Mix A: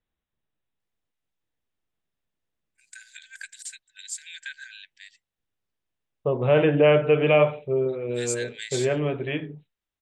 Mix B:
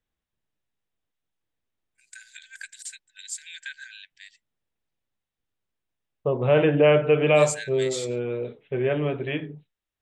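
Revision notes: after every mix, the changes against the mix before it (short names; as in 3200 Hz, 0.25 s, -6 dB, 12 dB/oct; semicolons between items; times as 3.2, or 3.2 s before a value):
first voice: entry -0.80 s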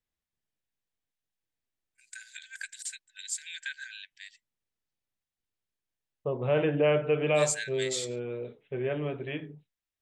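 second voice -7.0 dB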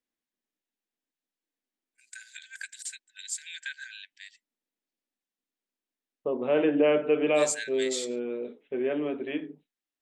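second voice: add resonant low shelf 170 Hz -13.5 dB, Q 3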